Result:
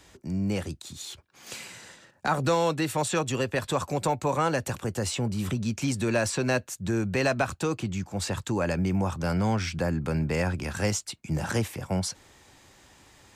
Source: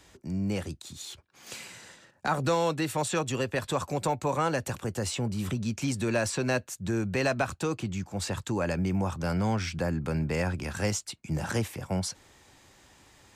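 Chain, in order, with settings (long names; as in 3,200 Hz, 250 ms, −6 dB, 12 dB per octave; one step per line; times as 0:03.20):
level +2 dB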